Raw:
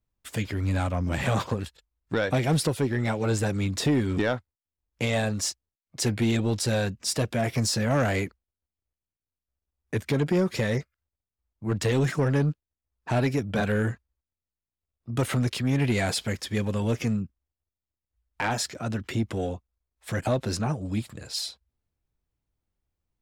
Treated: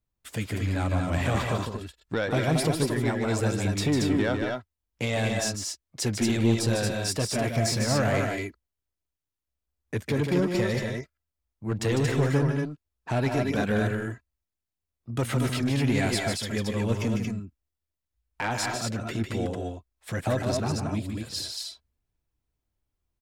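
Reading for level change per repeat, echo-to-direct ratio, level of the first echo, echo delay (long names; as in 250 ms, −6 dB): repeats not evenly spaced, −1.5 dB, −6.0 dB, 151 ms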